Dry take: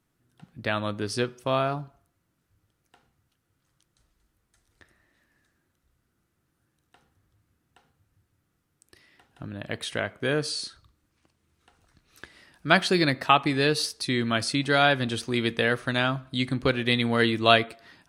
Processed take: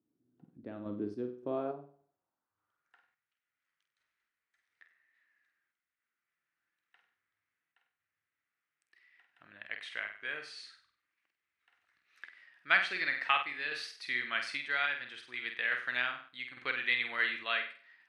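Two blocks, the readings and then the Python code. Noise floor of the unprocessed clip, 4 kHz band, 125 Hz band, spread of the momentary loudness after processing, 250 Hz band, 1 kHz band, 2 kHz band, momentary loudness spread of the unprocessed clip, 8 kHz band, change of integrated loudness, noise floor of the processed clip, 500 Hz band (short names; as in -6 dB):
-76 dBFS, -12.0 dB, under -25 dB, 18 LU, -18.0 dB, -12.0 dB, -4.5 dB, 13 LU, -21.0 dB, -9.0 dB, under -85 dBFS, -16.5 dB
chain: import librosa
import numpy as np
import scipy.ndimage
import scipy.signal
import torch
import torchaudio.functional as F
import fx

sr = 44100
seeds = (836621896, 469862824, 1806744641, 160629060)

y = fx.filter_sweep_bandpass(x, sr, from_hz=300.0, to_hz=2000.0, start_s=1.35, end_s=3.16, q=2.7)
y = fx.room_flutter(y, sr, wall_m=8.3, rt60_s=0.43)
y = fx.tremolo_random(y, sr, seeds[0], hz=3.5, depth_pct=55)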